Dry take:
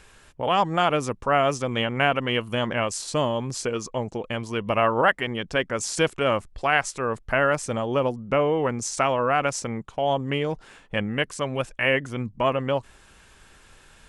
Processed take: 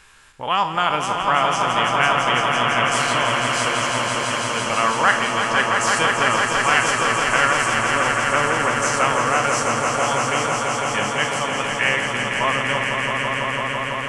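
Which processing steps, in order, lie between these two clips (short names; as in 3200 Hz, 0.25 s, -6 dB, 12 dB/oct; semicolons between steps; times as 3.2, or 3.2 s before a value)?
spectral trails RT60 0.32 s; resonant low shelf 790 Hz -6.5 dB, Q 1.5; swelling echo 0.167 s, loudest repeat 5, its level -6 dB; gain +2 dB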